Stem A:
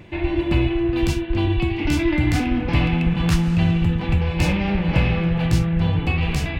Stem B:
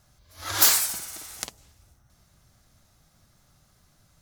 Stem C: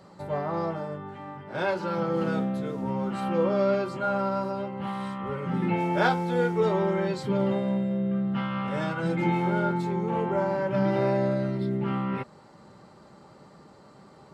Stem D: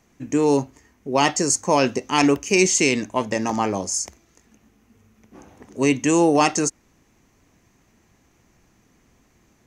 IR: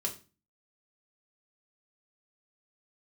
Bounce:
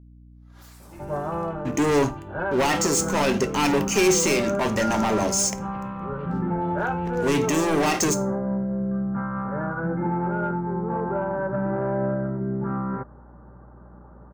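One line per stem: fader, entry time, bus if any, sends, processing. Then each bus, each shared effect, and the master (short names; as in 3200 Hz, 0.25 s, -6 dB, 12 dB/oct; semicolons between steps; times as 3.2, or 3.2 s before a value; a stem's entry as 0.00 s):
-18.0 dB, 0.80 s, bus A, no send, dry
-17.5 dB, 0.00 s, bus A, send -8.5 dB, gate with hold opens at -49 dBFS; compressor 12:1, threshold -23 dBFS, peak gain reduction 11.5 dB; attack slew limiter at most 150 dB/s
+1.5 dB, 0.80 s, bus B, no send, Chebyshev low-pass 1600 Hz, order 5; soft clip -12.5 dBFS, distortion -29 dB
-15.5 dB, 1.45 s, bus B, send -7.5 dB, sample leveller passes 5
bus A: 0.0 dB, high shelf 4500 Hz -11 dB; limiter -34 dBFS, peak gain reduction 9.5 dB
bus B: 0.0 dB, bell 2200 Hz +4.5 dB 1.2 oct; limiter -17.5 dBFS, peak gain reduction 7 dB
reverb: on, RT60 0.35 s, pre-delay 3 ms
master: hum 60 Hz, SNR 23 dB; mismatched tape noise reduction decoder only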